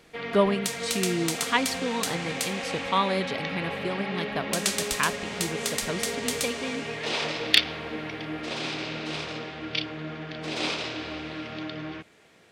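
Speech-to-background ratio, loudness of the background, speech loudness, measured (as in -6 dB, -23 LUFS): -0.5 dB, -30.0 LUFS, -30.5 LUFS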